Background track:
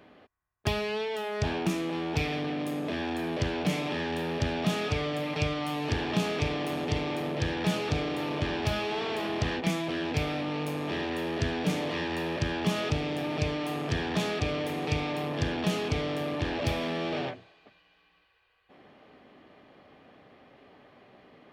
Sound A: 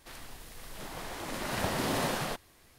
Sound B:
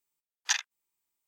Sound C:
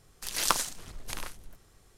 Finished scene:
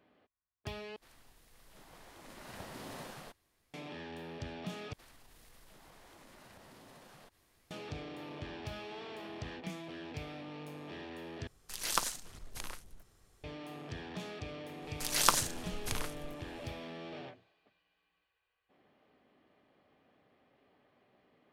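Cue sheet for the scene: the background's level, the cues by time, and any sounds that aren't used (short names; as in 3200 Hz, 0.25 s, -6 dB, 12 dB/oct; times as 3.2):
background track -14 dB
0.96 replace with A -15.5 dB
4.93 replace with A -9.5 dB + compressor, threshold -45 dBFS
11.47 replace with C -6 dB
14.78 add C -0.5 dB, fades 0.10 s
not used: B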